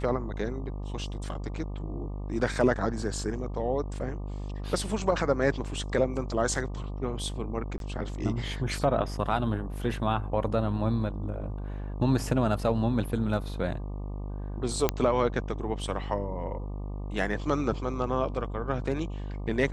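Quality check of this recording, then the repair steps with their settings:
buzz 50 Hz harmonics 24 -35 dBFS
7.78–7.80 s: dropout 22 ms
14.89 s: pop -9 dBFS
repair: de-click; de-hum 50 Hz, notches 24; interpolate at 7.78 s, 22 ms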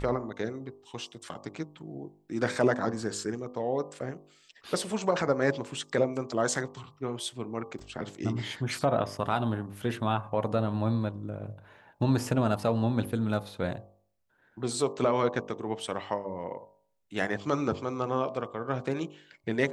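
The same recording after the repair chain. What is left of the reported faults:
nothing left

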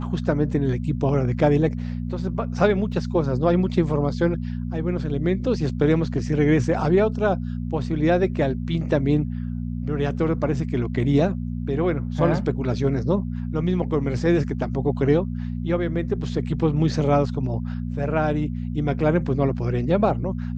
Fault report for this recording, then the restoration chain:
hum 60 Hz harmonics 4 -28 dBFS
2.92 s: dropout 2.4 ms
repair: de-hum 60 Hz, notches 4; interpolate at 2.92 s, 2.4 ms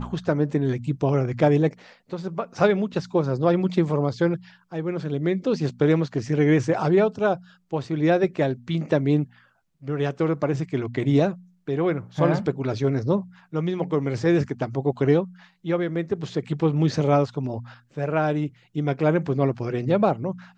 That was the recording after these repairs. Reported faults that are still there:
nothing left

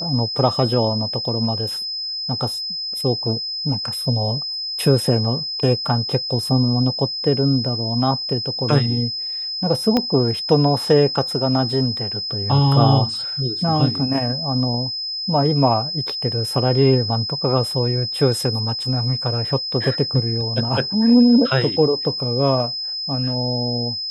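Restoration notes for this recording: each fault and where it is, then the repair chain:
whine 5.1 kHz -24 dBFS
9.97 s: pop -6 dBFS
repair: de-click; band-stop 5.1 kHz, Q 30

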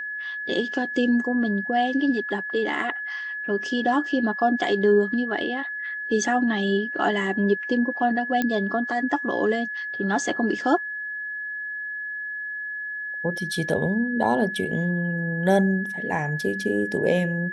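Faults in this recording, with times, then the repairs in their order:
whine 1.7 kHz -29 dBFS
8.42 s: pop -11 dBFS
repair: de-click; band-stop 1.7 kHz, Q 30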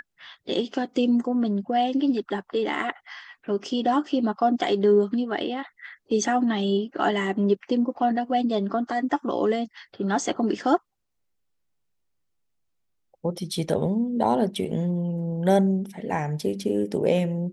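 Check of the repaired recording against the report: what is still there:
nothing left

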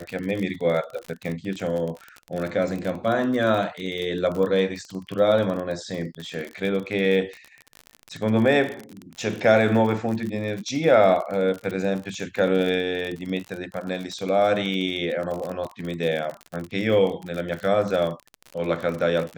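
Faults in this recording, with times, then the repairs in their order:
crackle 42 per s -28 dBFS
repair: de-click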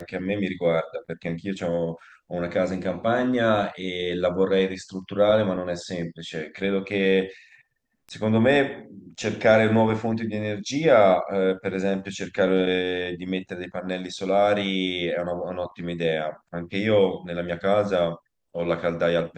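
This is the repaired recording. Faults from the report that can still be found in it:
nothing left

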